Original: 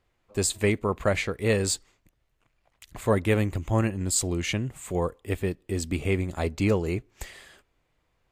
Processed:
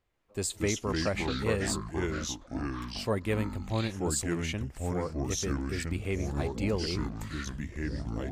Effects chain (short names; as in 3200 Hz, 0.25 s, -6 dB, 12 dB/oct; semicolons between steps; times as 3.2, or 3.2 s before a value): echoes that change speed 0.134 s, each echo -4 st, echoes 3; gain -7 dB